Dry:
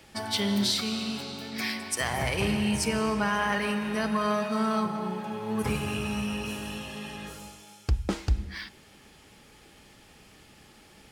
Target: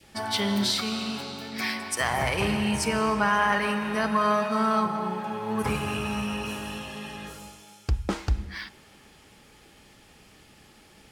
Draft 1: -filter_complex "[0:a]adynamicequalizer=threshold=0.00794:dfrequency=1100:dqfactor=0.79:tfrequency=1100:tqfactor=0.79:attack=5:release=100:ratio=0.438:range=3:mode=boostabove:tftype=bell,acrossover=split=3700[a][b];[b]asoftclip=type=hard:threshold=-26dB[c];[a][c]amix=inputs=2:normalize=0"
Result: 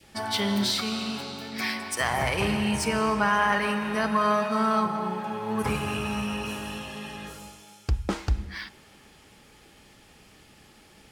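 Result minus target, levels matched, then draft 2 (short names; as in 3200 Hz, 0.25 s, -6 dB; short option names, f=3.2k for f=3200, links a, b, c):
hard clip: distortion +20 dB
-filter_complex "[0:a]adynamicequalizer=threshold=0.00794:dfrequency=1100:dqfactor=0.79:tfrequency=1100:tqfactor=0.79:attack=5:release=100:ratio=0.438:range=3:mode=boostabove:tftype=bell,acrossover=split=3700[a][b];[b]asoftclip=type=hard:threshold=-19dB[c];[a][c]amix=inputs=2:normalize=0"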